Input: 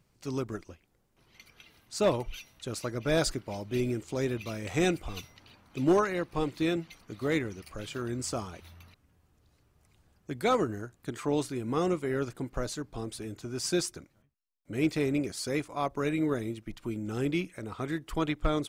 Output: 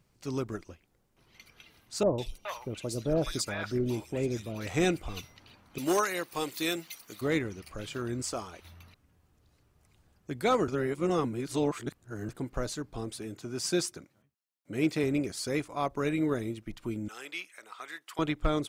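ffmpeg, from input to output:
ffmpeg -i in.wav -filter_complex "[0:a]asettb=1/sr,asplit=3[link_01][link_02][link_03];[link_01]atrim=end=2.034[link_04];[link_02]atrim=start=2.03:end=4.67,asetpts=PTS-STARTPTS,afade=type=in:duration=0.004:curve=qsin,afade=type=out:start_time=2.636:duration=0.004:curve=qsin,acrossover=split=910|3000[link_05][link_06][link_07];[link_07]adelay=150[link_08];[link_06]adelay=420[link_09];[link_05][link_09][link_08]amix=inputs=3:normalize=0,atrim=end_sample=116424[link_10];[link_03]atrim=start=4.666[link_11];[link_04][link_10]acrossfade=duration=0.004:curve1=hsin:curve2=qsin[link_12];[link_12][link_11]acrossfade=duration=0.004:curve1=qsin:curve2=hsin,asettb=1/sr,asplit=3[link_13][link_14][link_15];[link_13]atrim=end=5.784[link_16];[link_14]atrim=start=5.78:end=7.21,asetpts=PTS-STARTPTS,afade=type=in:duration=0.004:curve=qsin,afade=type=out:start_time=1.426:duration=0.004:curve=qsin,aemphasis=mode=production:type=riaa[link_17];[link_15]atrim=start=7.206[link_18];[link_16][link_17]acrossfade=duration=0.004:curve1=hsin:curve2=qsin[link_19];[link_19][link_18]acrossfade=duration=0.004:curve1=qsin:curve2=hsin,asettb=1/sr,asplit=3[link_20][link_21][link_22];[link_20]atrim=end=8.224[link_23];[link_21]atrim=start=8.22:end=8.65,asetpts=PTS-STARTPTS,afade=type=in:duration=0.004:curve=qsin,afade=type=out:start_time=0.426:duration=0.004:curve=qsin,equalizer=frequency=130:width_type=o:width=1.8:gain=-10[link_24];[link_22]atrim=start=8.646[link_25];[link_23][link_24]acrossfade=duration=0.004:curve1=hsin:curve2=qsin[link_26];[link_26][link_25]acrossfade=duration=0.004:curve1=qsin:curve2=hsin,asettb=1/sr,asplit=3[link_27][link_28][link_29];[link_27]atrim=end=13.124[link_30];[link_28]atrim=start=13.12:end=15.04,asetpts=PTS-STARTPTS,afade=type=in:duration=0.004:curve=qsin,afade=type=out:start_time=1.916:duration=0.004:curve=qsin,highpass=110[link_31];[link_29]atrim=start=15.036[link_32];[link_30][link_31]acrossfade=duration=0.004:curve1=hsin:curve2=qsin[link_33];[link_33][link_32]acrossfade=duration=0.004:curve1=qsin:curve2=hsin,asettb=1/sr,asplit=3[link_34][link_35][link_36];[link_34]atrim=end=17.084[link_37];[link_35]atrim=start=17.08:end=18.19,asetpts=PTS-STARTPTS,afade=type=in:duration=0.004:curve=qsin,afade=type=out:start_time=1.106:duration=0.004:curve=qsin,highpass=1100[link_38];[link_36]atrim=start=18.186[link_39];[link_37][link_38]acrossfade=duration=0.004:curve1=hsin:curve2=qsin[link_40];[link_40][link_39]acrossfade=duration=0.004:curve1=qsin:curve2=hsin,asplit=3[link_41][link_42][link_43];[link_41]atrim=end=10.682[link_44];[link_42]atrim=start=10.678:end=12.292,asetpts=PTS-STARTPTS,areverse[link_45];[link_43]atrim=start=12.288[link_46];[link_44][link_45]acrossfade=duration=0.004:curve1=hsin:curve2=hsin[link_47];[link_47][link_46]acrossfade=duration=0.004:curve1=hsin:curve2=hsin" out.wav

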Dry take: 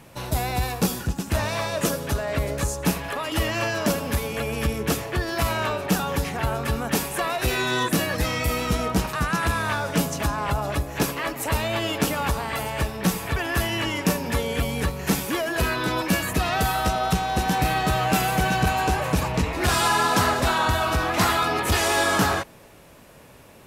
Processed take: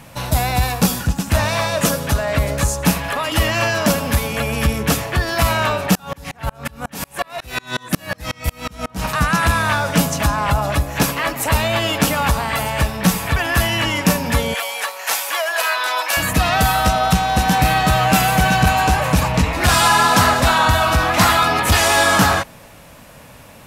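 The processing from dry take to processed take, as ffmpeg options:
ffmpeg -i in.wav -filter_complex "[0:a]asettb=1/sr,asplit=3[link_01][link_02][link_03];[link_01]atrim=end=5.954[link_04];[link_02]atrim=start=5.95:end=9.04,asetpts=PTS-STARTPTS,afade=type=in:duration=0.004:curve=qsin,afade=type=out:start_time=3.086:duration=0.004:curve=qsin,aeval=exprs='val(0)*pow(10,-35*if(lt(mod(-5.5*n/s,1),2*abs(-5.5)/1000),1-mod(-5.5*n/s,1)/(2*abs(-5.5)/1000),(mod(-5.5*n/s,1)-2*abs(-5.5)/1000)/(1-2*abs(-5.5)/1000))/20)':channel_layout=same[link_05];[link_03]atrim=start=9.036[link_06];[link_04][link_05]acrossfade=duration=0.004:curve1=hsin:curve2=qsin[link_07];[link_07][link_06]acrossfade=duration=0.004:curve1=qsin:curve2=hsin,asettb=1/sr,asplit=3[link_08][link_09][link_10];[link_08]atrim=end=14.544[link_11];[link_09]atrim=start=14.54:end=16.17,asetpts=PTS-STARTPTS,afade=type=in:duration=0.004:curve=qsin,afade=type=out:start_time=1.626:duration=0.004:curve=qsin,highpass=frequency=610:width=0.5412,highpass=frequency=610:width=1.3066[link_12];[link_10]atrim=start=16.166[link_13];[link_11][link_12]acrossfade=duration=0.004:curve1=hsin:curve2=qsin[link_14];[link_14][link_13]acrossfade=duration=0.004:curve1=qsin:curve2=hsin,equalizer=frequency=380:width=2.9:gain=-10,acontrast=22,volume=3dB" out.wav

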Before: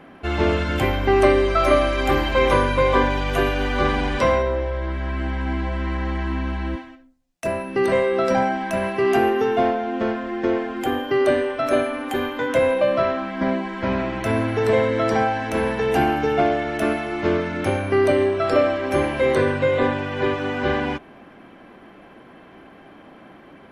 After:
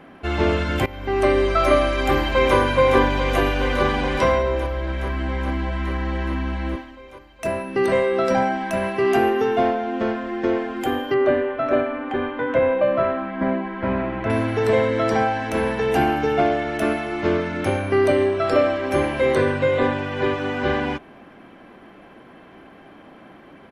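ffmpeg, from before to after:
ffmpeg -i in.wav -filter_complex "[0:a]asplit=2[link_01][link_02];[link_02]afade=type=in:start_time=2.04:duration=0.01,afade=type=out:start_time=2.56:duration=0.01,aecho=0:1:420|840|1260|1680|2100|2520|2940|3360|3780|4200|4620|5040:0.473151|0.378521|0.302817|0.242253|0.193803|0.155042|0.124034|0.099227|0.0793816|0.0635053|0.0508042|0.0406434[link_03];[link_01][link_03]amix=inputs=2:normalize=0,asettb=1/sr,asplit=3[link_04][link_05][link_06];[link_04]atrim=end=11.144[link_07];[link_05]atrim=start=11.14:end=14.3,asetpts=PTS-STARTPTS,afade=type=in:duration=0.004:curve=qsin,afade=type=out:start_time=3.156:duration=0.004:curve=qsin,lowpass=2200[link_08];[link_06]atrim=start=14.296[link_09];[link_07][link_08]acrossfade=duration=0.004:curve1=hsin:curve2=qsin[link_10];[link_10][link_09]acrossfade=duration=0.004:curve1=qsin:curve2=hsin,asplit=2[link_11][link_12];[link_11]atrim=end=0.86,asetpts=PTS-STARTPTS,afade=type=out:start_time=0.856:duration=0.004:curve=hsin:silence=0.112202[link_13];[link_12]atrim=start=0.86,asetpts=PTS-STARTPTS,afade=type=in:duration=0.57:silence=0.112202[link_14];[link_13][link_14]concat=n=2:v=0:a=1" out.wav

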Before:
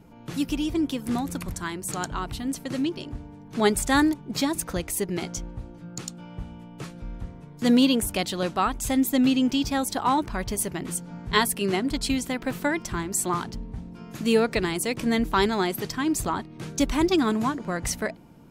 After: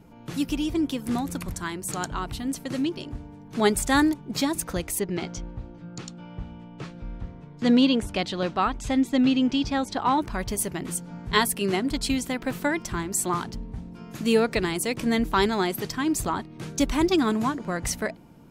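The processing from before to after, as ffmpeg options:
ffmpeg -i in.wav -filter_complex "[0:a]asettb=1/sr,asplit=3[link_01][link_02][link_03];[link_01]atrim=end=4.994[link_04];[link_02]atrim=start=4.99:end=10.21,asetpts=PTS-STARTPTS,afade=type=in:duration=0.004:curve=qsin,afade=type=out:start_time=5.216:duration=0.004:curve=qsin,lowpass=4900[link_05];[link_03]atrim=start=10.206[link_06];[link_04][link_05]acrossfade=duration=0.004:curve1=hsin:curve2=qsin[link_07];[link_07][link_06]acrossfade=duration=0.004:curve1=qsin:curve2=hsin" out.wav

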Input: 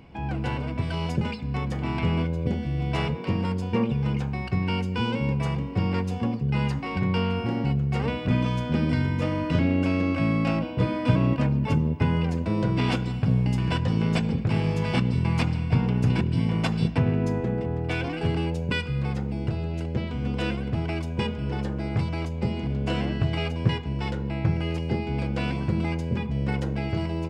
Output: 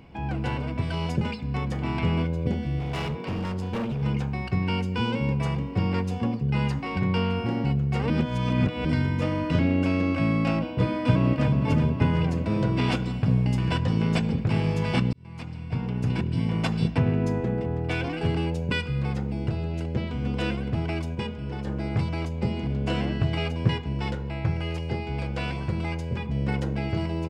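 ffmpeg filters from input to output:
ffmpeg -i in.wav -filter_complex "[0:a]asettb=1/sr,asplit=3[link_01][link_02][link_03];[link_01]atrim=end=2.794[link_04];[link_02]atrim=start=2.79:end=4.02,asetpts=PTS-STARTPTS,afade=type=in:duration=0.004:curve=qsin,afade=type=out:start_time=1.226:duration=0.004:curve=qsin,asoftclip=type=hard:threshold=-26dB[link_05];[link_03]atrim=start=4.016[link_06];[link_04][link_05]acrossfade=duration=0.004:curve1=hsin:curve2=qsin[link_07];[link_07][link_06]acrossfade=duration=0.004:curve1=qsin:curve2=hsin,asplit=2[link_08][link_09];[link_09]afade=type=in:start_time=10.87:duration=0.01,afade=type=out:start_time=11.53:duration=0.01,aecho=0:1:370|740|1110|1480|1850|2220|2590|2960|3330|3700|4070:0.421697|0.295188|0.206631|0.144642|0.101249|0.0708745|0.0496122|0.0347285|0.02431|0.017017|0.0119119[link_10];[link_08][link_10]amix=inputs=2:normalize=0,asettb=1/sr,asplit=3[link_11][link_12][link_13];[link_11]atrim=end=24.154[link_14];[link_12]atrim=start=24.15:end=26.27,asetpts=PTS-STARTPTS,afade=type=in:duration=0.004:curve=qsin,afade=type=out:start_time=2.116:duration=0.004:curve=qsin,equalizer=frequency=240:width=1.1:gain=-7[link_15];[link_13]atrim=start=26.266[link_16];[link_14][link_15]acrossfade=duration=0.004:curve1=hsin:curve2=qsin[link_17];[link_17][link_16]acrossfade=duration=0.004:curve1=qsin:curve2=hsin,asplit=6[link_18][link_19][link_20][link_21][link_22][link_23];[link_18]atrim=end=8.102[link_24];[link_19]atrim=start=8.098:end=8.852,asetpts=PTS-STARTPTS,areverse[link_25];[link_20]atrim=start=8.848:end=15.13,asetpts=PTS-STARTPTS,afade=type=out:start_time=6.278:duration=0.004:curve=hsin[link_26];[link_21]atrim=start=15.13:end=21.152,asetpts=PTS-STARTPTS,afade=type=in:duration=2.09:curve=qsin[link_27];[link_22]atrim=start=21.148:end=21.672,asetpts=PTS-STARTPTS,volume=-4dB[link_28];[link_23]atrim=start=21.668[link_29];[link_24][link_25]acrossfade=duration=0.004:curve1=hsin:curve2=hsin[link_30];[link_26][link_27]concat=n=2:v=0:a=1[link_31];[link_30][link_31]acrossfade=duration=0.004:curve1=hsin:curve2=hsin[link_32];[link_32][link_28]acrossfade=duration=0.004:curve1=hsin:curve2=hsin[link_33];[link_33][link_29]acrossfade=duration=0.004:curve1=hsin:curve2=hsin" out.wav

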